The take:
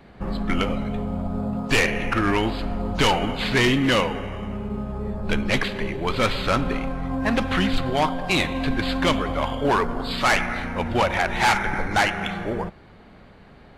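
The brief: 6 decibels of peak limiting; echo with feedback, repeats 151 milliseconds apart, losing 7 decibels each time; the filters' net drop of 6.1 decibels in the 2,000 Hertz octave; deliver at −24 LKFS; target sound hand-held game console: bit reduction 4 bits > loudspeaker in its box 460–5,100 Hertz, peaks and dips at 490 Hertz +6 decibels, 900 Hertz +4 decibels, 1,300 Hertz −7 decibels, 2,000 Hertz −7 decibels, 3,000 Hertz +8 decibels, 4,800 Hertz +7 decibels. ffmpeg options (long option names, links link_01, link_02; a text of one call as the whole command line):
ffmpeg -i in.wav -af "equalizer=frequency=2000:width_type=o:gain=-5,alimiter=limit=-19.5dB:level=0:latency=1,aecho=1:1:151|302|453|604|755:0.447|0.201|0.0905|0.0407|0.0183,acrusher=bits=3:mix=0:aa=0.000001,highpass=460,equalizer=frequency=490:width_type=q:width=4:gain=6,equalizer=frequency=900:width_type=q:width=4:gain=4,equalizer=frequency=1300:width_type=q:width=4:gain=-7,equalizer=frequency=2000:width_type=q:width=4:gain=-7,equalizer=frequency=3000:width_type=q:width=4:gain=8,equalizer=frequency=4800:width_type=q:width=4:gain=7,lowpass=frequency=5100:width=0.5412,lowpass=frequency=5100:width=1.3066,volume=1dB" out.wav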